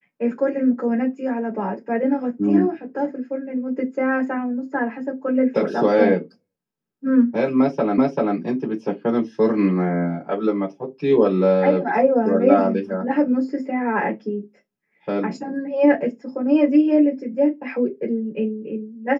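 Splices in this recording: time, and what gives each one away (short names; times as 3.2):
7.98 repeat of the last 0.39 s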